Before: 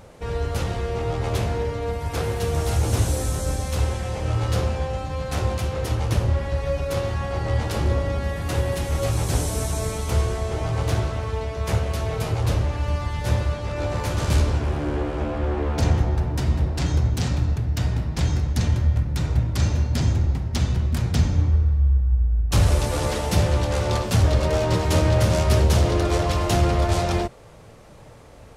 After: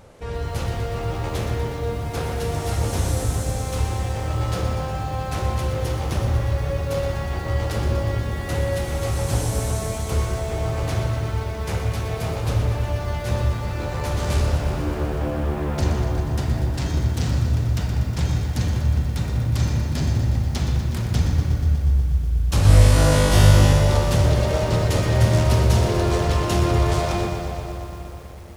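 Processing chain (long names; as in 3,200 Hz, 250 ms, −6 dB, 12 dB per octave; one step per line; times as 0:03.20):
0:22.63–0:23.73: flutter between parallel walls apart 3.4 metres, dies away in 1.4 s
convolution reverb RT60 3.5 s, pre-delay 21 ms, DRR 5 dB
feedback echo at a low word length 121 ms, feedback 80%, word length 7 bits, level −10 dB
level −2 dB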